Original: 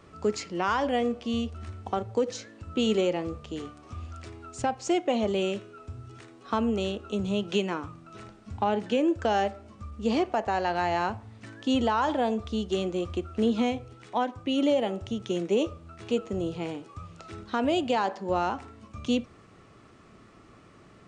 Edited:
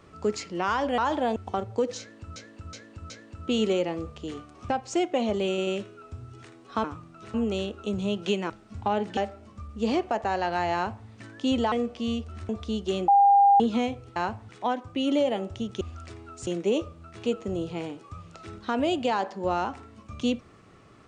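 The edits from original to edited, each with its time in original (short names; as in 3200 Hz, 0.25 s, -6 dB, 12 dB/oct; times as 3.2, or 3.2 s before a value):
0.98–1.75 swap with 11.95–12.33
2.38–2.75 loop, 4 plays
3.97–4.63 move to 15.32
5.43 stutter 0.09 s, 3 plays
7.76–8.26 move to 6.6
8.93–9.4 cut
10.97–11.3 copy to 14
12.92–13.44 bleep 802 Hz -14 dBFS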